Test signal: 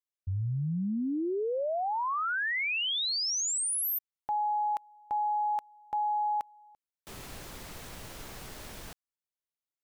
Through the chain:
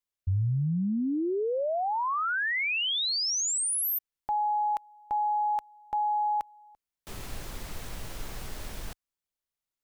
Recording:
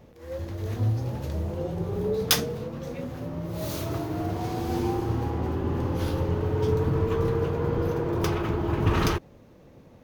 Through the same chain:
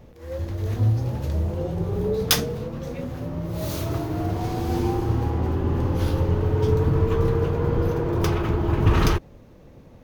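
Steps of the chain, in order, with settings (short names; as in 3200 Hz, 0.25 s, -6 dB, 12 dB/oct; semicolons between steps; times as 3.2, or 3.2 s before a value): low shelf 61 Hz +11.5 dB; gain +2 dB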